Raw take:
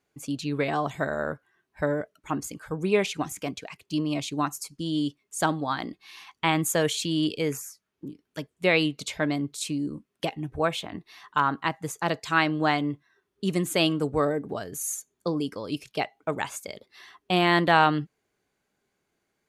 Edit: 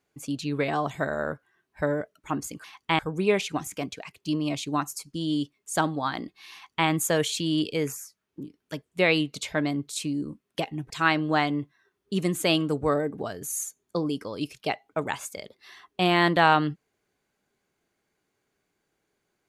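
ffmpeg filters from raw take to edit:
ffmpeg -i in.wav -filter_complex "[0:a]asplit=4[link_01][link_02][link_03][link_04];[link_01]atrim=end=2.642[link_05];[link_02]atrim=start=6.178:end=6.532[link_06];[link_03]atrim=start=2.638:end=10.552[link_07];[link_04]atrim=start=12.208[link_08];[link_05][link_06]acrossfade=duration=0.004:curve1=hsin:curve2=hsin[link_09];[link_09][link_07]acrossfade=duration=0.004:curve1=hsin:curve2=hsin[link_10];[link_10][link_08]acrossfade=duration=0.004:curve1=hsin:curve2=hsin" out.wav

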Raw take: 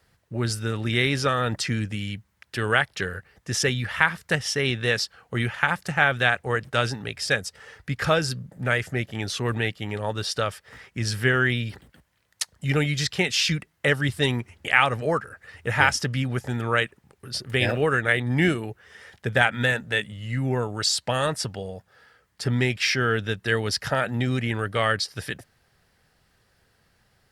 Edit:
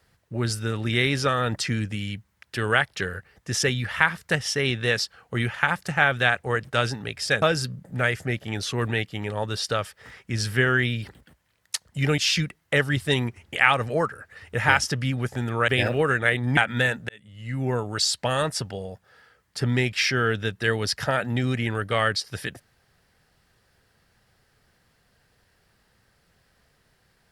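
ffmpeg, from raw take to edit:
ffmpeg -i in.wav -filter_complex "[0:a]asplit=6[link_01][link_02][link_03][link_04][link_05][link_06];[link_01]atrim=end=7.422[link_07];[link_02]atrim=start=8.088:end=12.852[link_08];[link_03]atrim=start=13.298:end=16.802[link_09];[link_04]atrim=start=17.508:end=18.402[link_10];[link_05]atrim=start=19.408:end=19.93,asetpts=PTS-STARTPTS,afade=type=out:start_time=0.518:duration=0.004:curve=hsin[link_11];[link_06]atrim=start=19.93,asetpts=PTS-STARTPTS,afade=type=in:duration=0.65[link_12];[link_07][link_08]acrossfade=duration=0.004:curve1=hsin:curve2=hsin[link_13];[link_13][link_09]acrossfade=duration=0.004:curve1=hsin:curve2=hsin[link_14];[link_14][link_10]acrossfade=duration=0.004:curve1=hsin:curve2=hsin[link_15];[link_11][link_12]concat=n=2:v=0:a=1[link_16];[link_15][link_16]acrossfade=duration=0.004:curve1=hsin:curve2=hsin" out.wav

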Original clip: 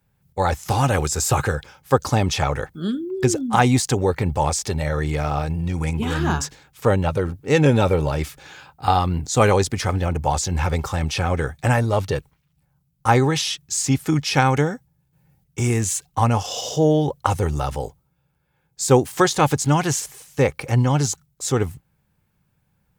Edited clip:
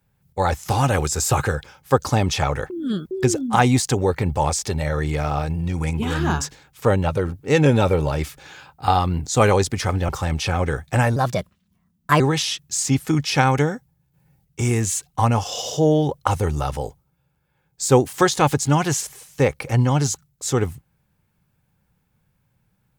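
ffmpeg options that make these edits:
ffmpeg -i in.wav -filter_complex "[0:a]asplit=6[link_01][link_02][link_03][link_04][link_05][link_06];[link_01]atrim=end=2.702[link_07];[link_02]atrim=start=2.698:end=3.112,asetpts=PTS-STARTPTS,areverse[link_08];[link_03]atrim=start=3.108:end=10.092[link_09];[link_04]atrim=start=10.798:end=11.874[link_10];[link_05]atrim=start=11.87:end=13.19,asetpts=PTS-STARTPTS,asetrate=56007,aresample=44100,atrim=end_sample=45836,asetpts=PTS-STARTPTS[link_11];[link_06]atrim=start=13.186[link_12];[link_07][link_08]acrossfade=duration=0.004:curve1=hsin:curve2=hsin[link_13];[link_13][link_09]acrossfade=duration=0.004:curve1=hsin:curve2=hsin[link_14];[link_14][link_10]acrossfade=duration=0.004:curve1=hsin:curve2=hsin[link_15];[link_15][link_11]acrossfade=duration=0.004:curve1=hsin:curve2=hsin[link_16];[link_16][link_12]acrossfade=duration=0.004:curve1=hsin:curve2=hsin" out.wav

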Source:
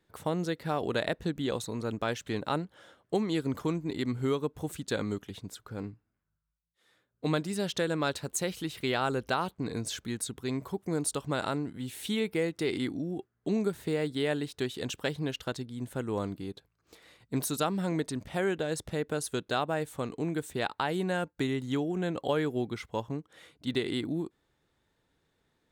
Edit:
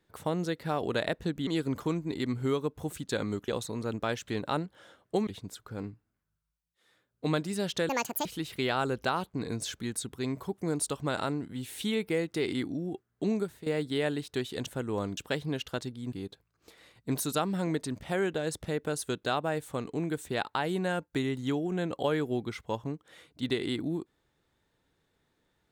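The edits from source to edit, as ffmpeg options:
ffmpeg -i in.wav -filter_complex "[0:a]asplit=10[link_01][link_02][link_03][link_04][link_05][link_06][link_07][link_08][link_09][link_10];[link_01]atrim=end=1.472[link_11];[link_02]atrim=start=3.258:end=5.272[link_12];[link_03]atrim=start=1.468:end=3.262[link_13];[link_04]atrim=start=5.268:end=7.894[link_14];[link_05]atrim=start=7.89:end=8.5,asetpts=PTS-STARTPTS,asetrate=74088,aresample=44100,atrim=end_sample=16012,asetpts=PTS-STARTPTS[link_15];[link_06]atrim=start=8.496:end=13.91,asetpts=PTS-STARTPTS,afade=type=out:start_time=5.084:duration=0.33:silence=0.199526[link_16];[link_07]atrim=start=13.91:end=14.912,asetpts=PTS-STARTPTS,afade=type=in:duration=0.004:curve=hsin:silence=0.199526[link_17];[link_08]atrim=start=15.858:end=16.372[link_18];[link_09]atrim=start=14.908:end=15.862[link_19];[link_10]atrim=start=16.368[link_20];[link_11][link_12]acrossfade=duration=0.004:curve1=hsin:curve2=hsin[link_21];[link_21][link_13]acrossfade=duration=0.004:curve1=hsin:curve2=hsin[link_22];[link_22][link_14]acrossfade=duration=0.004:curve1=hsin:curve2=hsin[link_23];[link_23][link_15]acrossfade=duration=0.004:curve1=hsin:curve2=hsin[link_24];[link_16][link_17]concat=n=2:v=0:a=1[link_25];[link_24][link_25]acrossfade=duration=0.004:curve1=hsin:curve2=hsin[link_26];[link_26][link_18]acrossfade=duration=0.004:curve1=hsin:curve2=hsin[link_27];[link_27][link_19]acrossfade=duration=0.004:curve1=hsin:curve2=hsin[link_28];[link_28][link_20]acrossfade=duration=0.004:curve1=hsin:curve2=hsin" out.wav

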